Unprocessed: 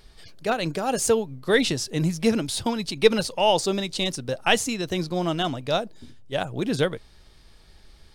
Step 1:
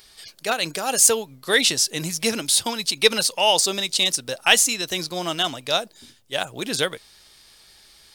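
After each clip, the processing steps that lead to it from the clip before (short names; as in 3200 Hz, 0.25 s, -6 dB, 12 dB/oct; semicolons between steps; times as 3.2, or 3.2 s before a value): tilt +3.5 dB/oct; gain +1.5 dB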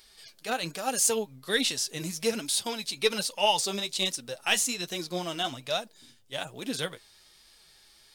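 harmonic-percussive split percussive -7 dB; flange 1.2 Hz, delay 3 ms, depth 7 ms, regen +37%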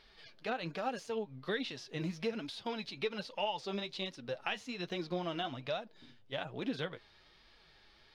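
compressor 4:1, threshold -34 dBFS, peak gain reduction 13.5 dB; air absorption 290 m; gain +2 dB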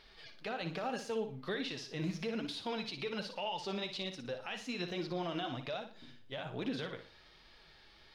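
limiter -31 dBFS, peak gain reduction 10.5 dB; flutter echo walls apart 10 m, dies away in 0.39 s; gain +2 dB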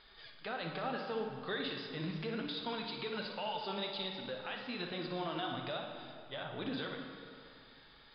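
rippled Chebyshev low-pass 5000 Hz, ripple 6 dB; reverb RT60 2.4 s, pre-delay 21 ms, DRR 4 dB; gain +2.5 dB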